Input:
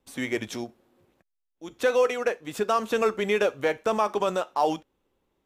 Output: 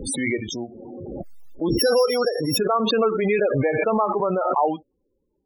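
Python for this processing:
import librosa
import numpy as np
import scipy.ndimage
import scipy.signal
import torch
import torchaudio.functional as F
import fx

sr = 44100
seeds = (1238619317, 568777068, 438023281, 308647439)

y = fx.sample_sort(x, sr, block=8, at=(1.68, 2.56), fade=0.02)
y = fx.spec_topn(y, sr, count=16)
y = fx.pre_swell(y, sr, db_per_s=22.0)
y = y * librosa.db_to_amplitude(2.5)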